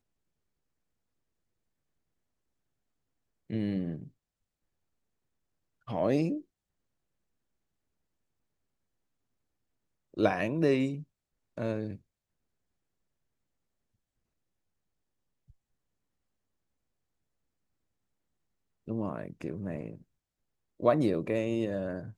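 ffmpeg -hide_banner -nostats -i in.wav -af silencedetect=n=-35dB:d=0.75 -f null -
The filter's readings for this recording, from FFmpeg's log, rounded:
silence_start: 0.00
silence_end: 3.51 | silence_duration: 3.51
silence_start: 4.03
silence_end: 5.88 | silence_duration: 1.85
silence_start: 6.38
silence_end: 10.17 | silence_duration: 3.79
silence_start: 11.94
silence_end: 18.88 | silence_duration: 6.94
silence_start: 19.93
silence_end: 20.80 | silence_duration: 0.87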